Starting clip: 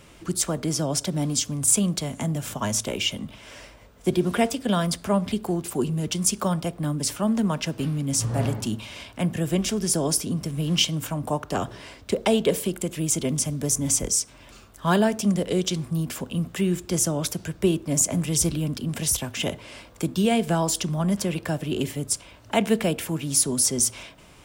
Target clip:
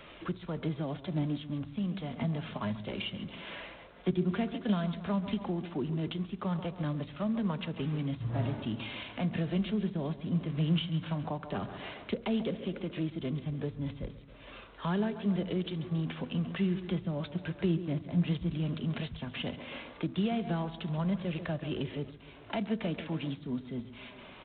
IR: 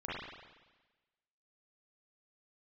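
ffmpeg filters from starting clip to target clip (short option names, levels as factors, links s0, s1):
-filter_complex "[0:a]flanger=delay=1.5:depth=4.6:regen=65:speed=0.14:shape=triangular,lowshelf=f=190:g=-11.5,asplit=2[s0][s1];[s1]adelay=136,lowpass=f=1900:p=1,volume=0.224,asplit=2[s2][s3];[s3]adelay=136,lowpass=f=1900:p=1,volume=0.53,asplit=2[s4][s5];[s5]adelay=136,lowpass=f=1900:p=1,volume=0.53,asplit=2[s6][s7];[s7]adelay=136,lowpass=f=1900:p=1,volume=0.53,asplit=2[s8][s9];[s9]adelay=136,lowpass=f=1900:p=1,volume=0.53[s10];[s0][s2][s4][s6][s8][s10]amix=inputs=6:normalize=0,acontrast=81,asettb=1/sr,asplit=3[s11][s12][s13];[s11]atrim=end=0.664[s14];[s12]atrim=start=0.66:end=3.02,asetpts=PTS-STARTPTS,afade=t=in:d=0.004:c=qsin,afade=t=out:st=2.356:d=0.004:c=qsin,aphaser=in_gain=1:out_gain=1:delay=4.8:decay=0.25:speed=1.9:type=triangular[s15];[s13]atrim=start=3.016[s16];[s14][s15]acrossfade=d=0.004:c1=hsin:c2=qsin[s17];[s17][s16]acrossfade=d=0.004:c1=qsin:c2=hsin,acrossover=split=210[s18][s19];[s19]acompressor=threshold=0.0126:ratio=4[s20];[s18][s20]amix=inputs=2:normalize=0" -ar 8000 -c:a adpcm_g726 -b:a 24k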